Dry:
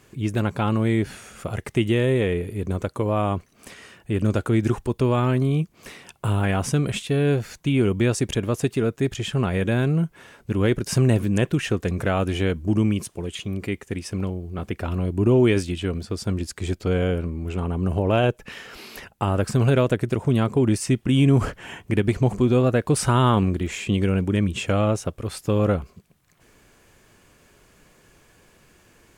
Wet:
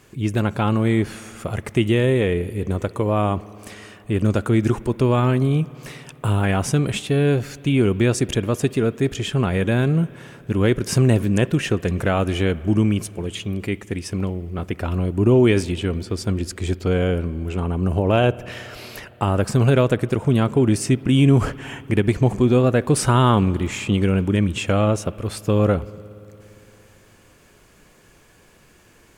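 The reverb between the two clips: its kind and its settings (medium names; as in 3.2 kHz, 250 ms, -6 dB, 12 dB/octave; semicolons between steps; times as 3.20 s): spring tank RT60 3.4 s, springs 57 ms, chirp 30 ms, DRR 19 dB; trim +2.5 dB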